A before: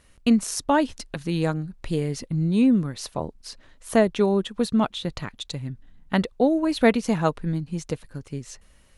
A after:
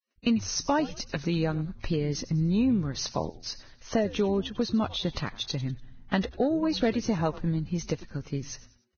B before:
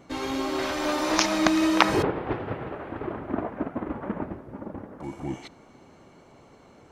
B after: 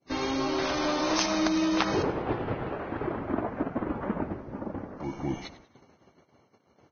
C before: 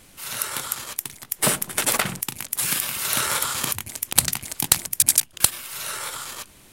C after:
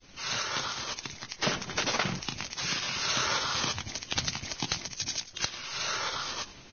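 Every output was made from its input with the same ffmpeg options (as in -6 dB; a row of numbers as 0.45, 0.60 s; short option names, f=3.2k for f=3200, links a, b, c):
-filter_complex "[0:a]agate=range=-28dB:threshold=-50dB:ratio=16:detection=peak,acontrast=60,adynamicequalizer=threshold=0.0158:dfrequency=1900:dqfactor=1.2:tfrequency=1900:tqfactor=1.2:attack=5:release=100:ratio=0.375:range=1.5:mode=cutabove:tftype=bell,acompressor=threshold=-20dB:ratio=2.5,asplit=4[a][b][c][d];[b]adelay=96,afreqshift=-130,volume=-17dB[e];[c]adelay=192,afreqshift=-260,volume=-25.2dB[f];[d]adelay=288,afreqshift=-390,volume=-33.4dB[g];[a][e][f][g]amix=inputs=4:normalize=0,volume=-5dB" -ar 16000 -c:a libvorbis -b:a 16k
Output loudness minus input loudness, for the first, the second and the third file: -5.0, -3.0, -8.5 LU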